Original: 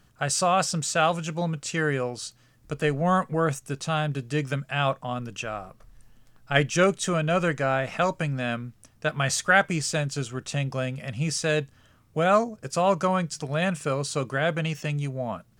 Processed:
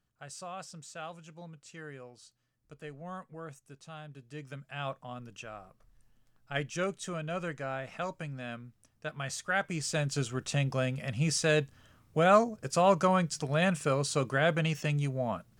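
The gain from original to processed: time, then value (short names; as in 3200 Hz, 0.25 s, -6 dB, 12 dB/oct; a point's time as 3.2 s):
4.11 s -20 dB
4.87 s -12 dB
9.49 s -12 dB
10.15 s -2 dB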